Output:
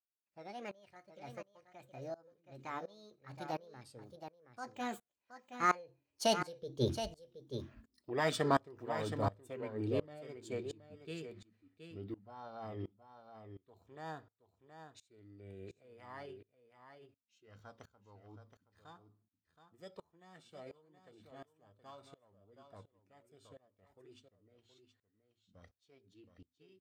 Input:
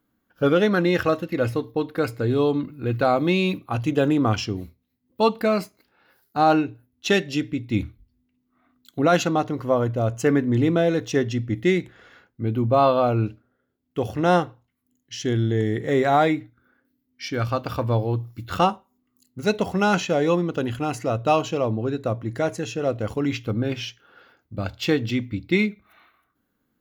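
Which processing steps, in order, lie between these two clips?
source passing by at 0:07.26, 41 m/s, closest 5 metres
single-tap delay 722 ms −9.5 dB
formants moved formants +6 semitones
tremolo with a ramp in dB swelling 1.4 Hz, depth 23 dB
level +13 dB

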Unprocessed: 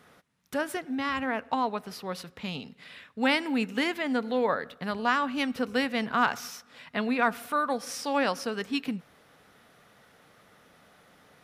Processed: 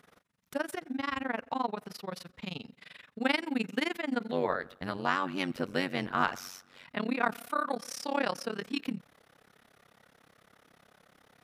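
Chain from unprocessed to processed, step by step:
amplitude modulation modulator 23 Hz, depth 95%, from 0:04.31 modulator 93 Hz, from 0:06.84 modulator 34 Hz

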